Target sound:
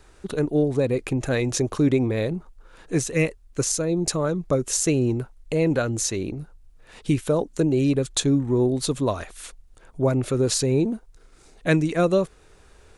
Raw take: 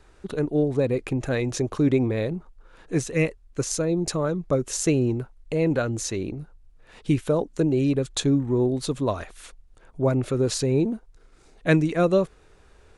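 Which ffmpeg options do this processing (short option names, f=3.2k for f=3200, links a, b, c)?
-filter_complex "[0:a]highshelf=f=5.6k:g=7.5,asplit=2[a][b];[b]alimiter=limit=-14.5dB:level=0:latency=1:release=378,volume=0.5dB[c];[a][c]amix=inputs=2:normalize=0,volume=-4.5dB"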